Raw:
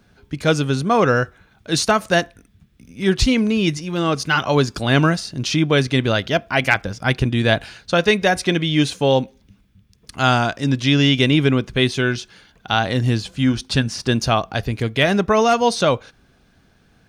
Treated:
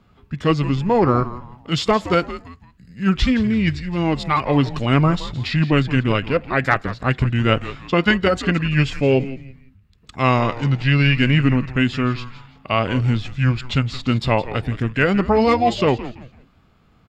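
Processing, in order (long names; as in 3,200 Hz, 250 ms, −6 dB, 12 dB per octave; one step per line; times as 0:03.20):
high-shelf EQ 6,400 Hz −10.5 dB
formants moved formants −4 semitones
echo with shifted repeats 168 ms, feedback 33%, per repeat −130 Hz, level −13.5 dB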